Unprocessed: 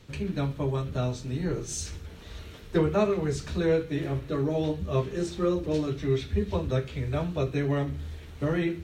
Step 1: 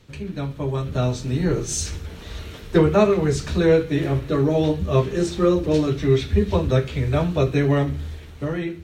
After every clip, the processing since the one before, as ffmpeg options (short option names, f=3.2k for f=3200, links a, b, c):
-af "dynaudnorm=f=100:g=17:m=8.5dB"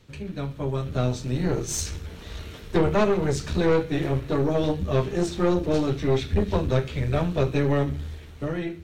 -af "aeval=exprs='(tanh(5.62*val(0)+0.6)-tanh(0.6))/5.62':c=same"